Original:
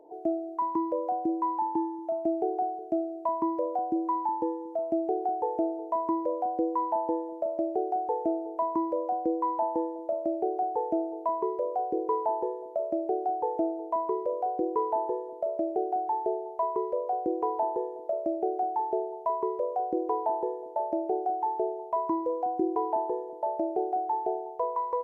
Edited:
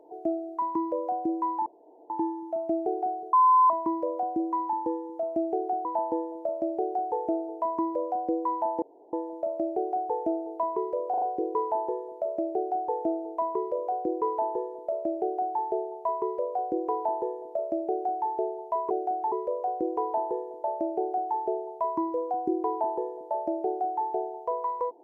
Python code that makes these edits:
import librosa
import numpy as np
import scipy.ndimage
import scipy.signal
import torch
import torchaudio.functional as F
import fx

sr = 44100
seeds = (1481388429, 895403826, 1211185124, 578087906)

y = fx.edit(x, sr, fx.insert_room_tone(at_s=1.66, length_s=0.44),
    fx.bleep(start_s=2.89, length_s=0.37, hz=1020.0, db=-15.5),
    fx.cut(start_s=5.41, length_s=1.41),
    fx.insert_room_tone(at_s=9.79, length_s=0.31),
    fx.stutter(start_s=11.76, slice_s=0.04, count=4),
    fx.duplicate(start_s=18.42, length_s=0.42, to_s=19.44), tone=tone)